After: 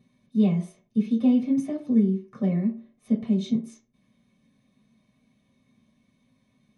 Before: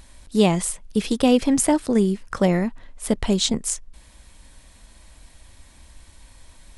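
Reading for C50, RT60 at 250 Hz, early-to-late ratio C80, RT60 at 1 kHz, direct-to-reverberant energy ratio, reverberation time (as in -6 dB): 11.5 dB, 0.40 s, 16.5 dB, 0.40 s, -6.0 dB, 0.45 s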